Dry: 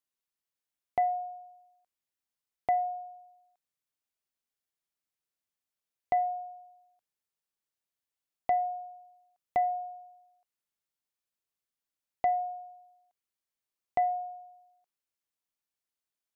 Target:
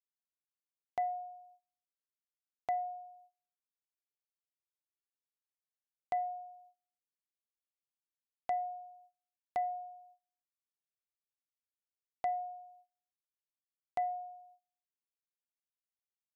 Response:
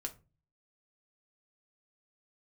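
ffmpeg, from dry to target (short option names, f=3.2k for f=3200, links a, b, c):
-af "agate=range=-24dB:threshold=-55dB:ratio=16:detection=peak,volume=-7dB"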